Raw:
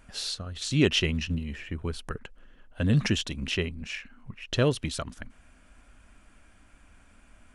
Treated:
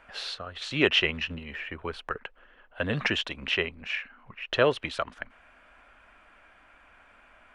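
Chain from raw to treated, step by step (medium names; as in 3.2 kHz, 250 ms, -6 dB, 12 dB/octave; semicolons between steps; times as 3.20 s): three-band isolator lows -18 dB, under 460 Hz, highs -22 dB, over 3.2 kHz; trim +7.5 dB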